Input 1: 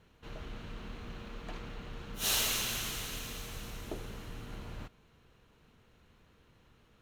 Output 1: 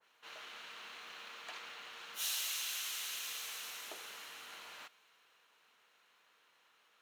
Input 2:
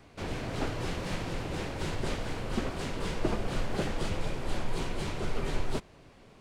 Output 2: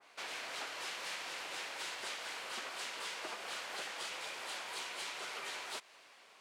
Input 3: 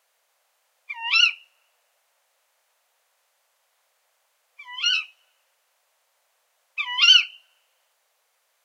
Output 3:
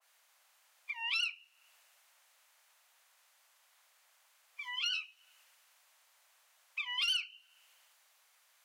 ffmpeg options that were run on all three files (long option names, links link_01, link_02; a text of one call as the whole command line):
ffmpeg -i in.wav -af "highpass=930,asoftclip=type=tanh:threshold=-8.5dB,acompressor=threshold=-44dB:ratio=3,adynamicequalizer=threshold=0.00112:dfrequency=1700:dqfactor=0.7:tfrequency=1700:tqfactor=0.7:attack=5:release=100:ratio=0.375:range=2:mode=boostabove:tftype=highshelf,volume=1dB" out.wav